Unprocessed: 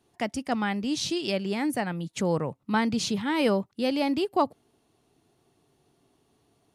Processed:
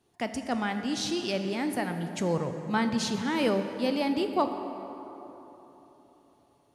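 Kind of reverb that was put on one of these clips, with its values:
dense smooth reverb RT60 3.7 s, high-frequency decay 0.5×, DRR 6.5 dB
level −2.5 dB

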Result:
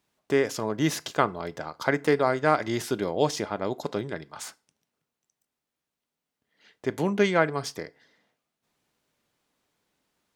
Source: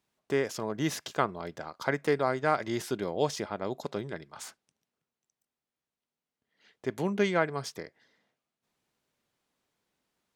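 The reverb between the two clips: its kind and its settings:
feedback delay network reverb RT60 0.35 s, low-frequency decay 1×, high-frequency decay 0.85×, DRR 16 dB
level +4.5 dB

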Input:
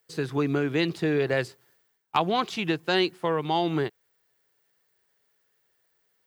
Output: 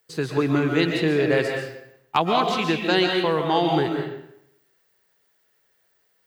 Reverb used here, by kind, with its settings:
comb and all-pass reverb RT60 0.79 s, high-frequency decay 0.8×, pre-delay 95 ms, DRR 2 dB
level +3 dB

